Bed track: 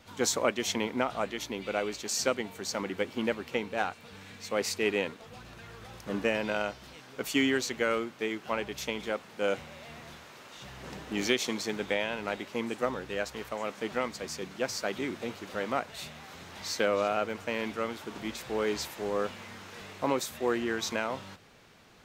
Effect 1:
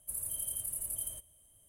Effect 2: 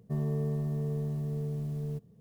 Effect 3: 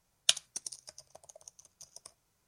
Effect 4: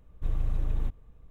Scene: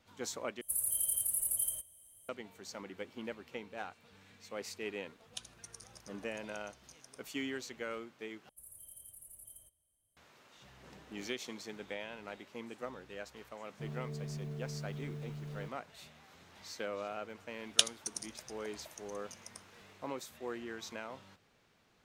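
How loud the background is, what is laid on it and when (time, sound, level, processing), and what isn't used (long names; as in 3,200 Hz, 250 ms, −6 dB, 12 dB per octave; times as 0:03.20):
bed track −12.5 dB
0:00.61: overwrite with 1 −1 dB + spectral tilt +1.5 dB per octave
0:05.08: mix in 3 −4 dB + downward compressor 2 to 1, threshold −46 dBFS
0:08.49: overwrite with 1 −16 dB
0:13.70: mix in 2 −9.5 dB + brickwall limiter −26 dBFS
0:17.50: mix in 3 −0.5 dB
not used: 4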